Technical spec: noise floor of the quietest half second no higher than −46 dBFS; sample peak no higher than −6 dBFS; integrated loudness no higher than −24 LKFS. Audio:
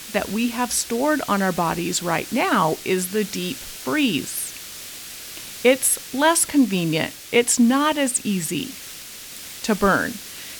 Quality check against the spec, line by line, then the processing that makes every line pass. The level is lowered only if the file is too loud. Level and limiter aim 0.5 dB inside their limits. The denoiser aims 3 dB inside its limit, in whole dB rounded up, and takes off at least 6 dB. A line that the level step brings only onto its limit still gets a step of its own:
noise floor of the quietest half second −38 dBFS: out of spec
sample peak −4.0 dBFS: out of spec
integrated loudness −21.0 LKFS: out of spec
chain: broadband denoise 8 dB, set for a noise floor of −38 dBFS
level −3.5 dB

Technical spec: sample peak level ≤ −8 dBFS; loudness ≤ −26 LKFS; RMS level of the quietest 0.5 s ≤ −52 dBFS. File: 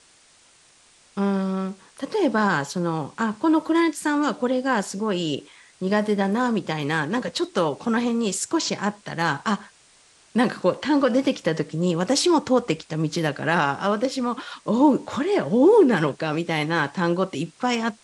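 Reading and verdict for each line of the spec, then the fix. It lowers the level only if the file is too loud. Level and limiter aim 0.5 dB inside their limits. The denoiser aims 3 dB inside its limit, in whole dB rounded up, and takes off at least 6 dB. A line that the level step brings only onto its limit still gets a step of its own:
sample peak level −6.0 dBFS: out of spec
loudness −23.0 LKFS: out of spec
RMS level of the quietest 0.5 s −56 dBFS: in spec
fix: level −3.5 dB

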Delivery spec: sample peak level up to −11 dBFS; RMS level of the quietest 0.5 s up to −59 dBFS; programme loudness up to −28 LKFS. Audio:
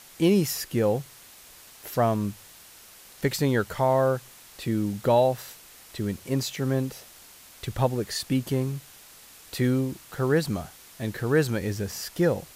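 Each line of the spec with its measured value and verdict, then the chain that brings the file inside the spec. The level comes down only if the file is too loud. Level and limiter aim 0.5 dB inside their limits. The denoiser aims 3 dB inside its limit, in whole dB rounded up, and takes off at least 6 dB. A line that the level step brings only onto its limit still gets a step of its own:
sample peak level −10.0 dBFS: out of spec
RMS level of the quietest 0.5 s −50 dBFS: out of spec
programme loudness −26.5 LKFS: out of spec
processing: broadband denoise 10 dB, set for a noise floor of −50 dBFS
level −2 dB

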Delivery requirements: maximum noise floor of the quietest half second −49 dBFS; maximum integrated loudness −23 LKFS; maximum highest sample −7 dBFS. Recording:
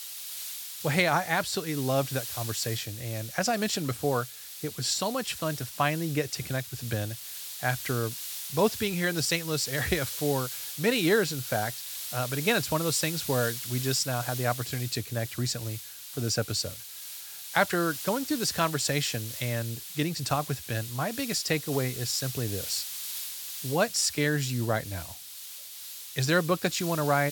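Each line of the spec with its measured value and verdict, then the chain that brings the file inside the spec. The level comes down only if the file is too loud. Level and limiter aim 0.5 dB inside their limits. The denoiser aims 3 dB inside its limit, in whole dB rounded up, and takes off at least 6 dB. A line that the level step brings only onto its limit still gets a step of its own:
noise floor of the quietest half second −43 dBFS: out of spec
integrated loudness −29.0 LKFS: in spec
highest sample −8.5 dBFS: in spec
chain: broadband denoise 9 dB, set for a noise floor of −43 dBFS

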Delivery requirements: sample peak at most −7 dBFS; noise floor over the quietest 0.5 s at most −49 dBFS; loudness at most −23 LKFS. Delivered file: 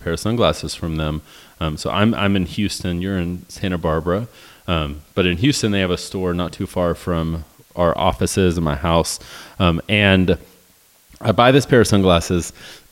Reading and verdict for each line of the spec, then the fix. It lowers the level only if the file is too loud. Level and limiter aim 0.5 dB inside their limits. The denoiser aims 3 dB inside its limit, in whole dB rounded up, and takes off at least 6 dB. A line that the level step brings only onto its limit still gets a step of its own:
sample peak −1.5 dBFS: out of spec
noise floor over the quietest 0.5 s −53 dBFS: in spec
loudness −18.5 LKFS: out of spec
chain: level −5 dB
brickwall limiter −7.5 dBFS

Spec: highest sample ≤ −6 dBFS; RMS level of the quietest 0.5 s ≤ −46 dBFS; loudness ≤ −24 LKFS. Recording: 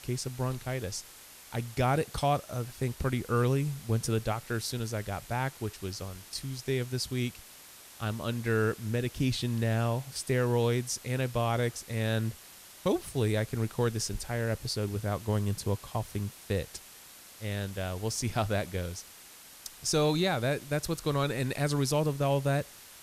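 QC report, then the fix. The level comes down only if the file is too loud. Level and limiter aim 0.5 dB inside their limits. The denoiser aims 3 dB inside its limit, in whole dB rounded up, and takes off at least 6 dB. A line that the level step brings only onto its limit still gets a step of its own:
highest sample −15.0 dBFS: in spec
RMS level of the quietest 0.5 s −51 dBFS: in spec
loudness −31.5 LKFS: in spec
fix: no processing needed

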